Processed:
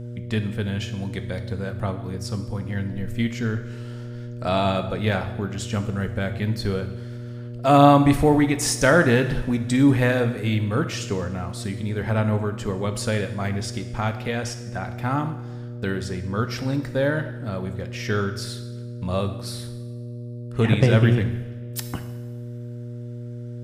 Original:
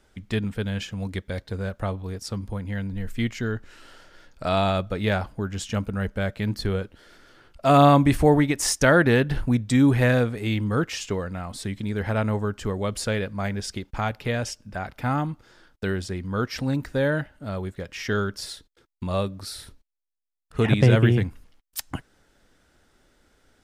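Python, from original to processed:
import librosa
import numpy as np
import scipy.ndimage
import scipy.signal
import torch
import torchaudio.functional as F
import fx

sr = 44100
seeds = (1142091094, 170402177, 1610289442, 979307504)

y = fx.rev_double_slope(x, sr, seeds[0], early_s=0.96, late_s=2.7, knee_db=-18, drr_db=7.5)
y = fx.dmg_buzz(y, sr, base_hz=120.0, harmonics=5, level_db=-34.0, tilt_db=-8, odd_only=False)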